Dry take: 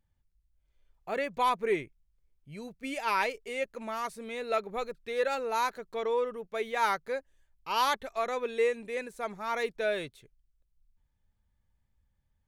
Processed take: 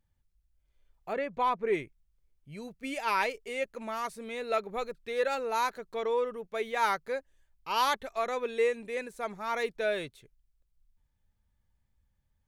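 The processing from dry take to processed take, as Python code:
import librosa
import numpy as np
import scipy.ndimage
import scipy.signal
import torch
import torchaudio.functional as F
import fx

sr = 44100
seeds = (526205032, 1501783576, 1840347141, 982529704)

y = fx.lowpass(x, sr, hz=1800.0, slope=6, at=(1.12, 1.72), fade=0.02)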